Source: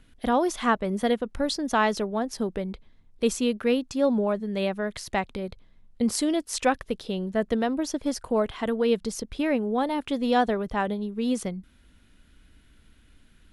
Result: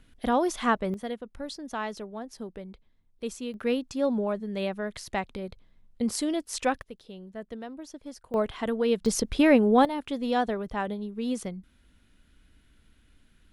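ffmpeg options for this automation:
-af "asetnsamples=n=441:p=0,asendcmd='0.94 volume volume -10.5dB;3.54 volume volume -3.5dB;6.82 volume volume -14dB;8.34 volume volume -2dB;9.06 volume volume 6dB;9.85 volume volume -4dB',volume=-1.5dB"

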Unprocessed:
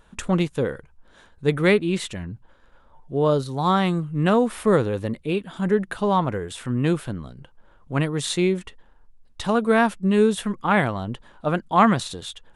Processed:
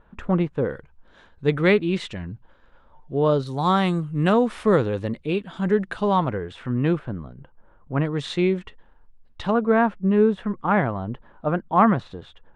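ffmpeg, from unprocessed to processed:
-af "asetnsamples=n=441:p=0,asendcmd='0.7 lowpass f 4300;3.47 lowpass f 9900;4.32 lowpass f 5500;6.32 lowpass f 2600;6.99 lowpass f 1600;8.05 lowpass f 3300;9.51 lowpass f 1600',lowpass=1.7k"

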